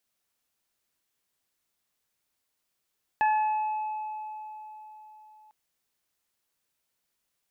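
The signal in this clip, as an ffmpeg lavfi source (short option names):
-f lavfi -i "aevalsrc='0.1*pow(10,-3*t/4.15)*sin(2*PI*859*t)+0.0398*pow(10,-3*t/0.77)*sin(2*PI*1718*t)+0.0158*pow(10,-3*t/2.82)*sin(2*PI*2577*t)':d=2.3:s=44100"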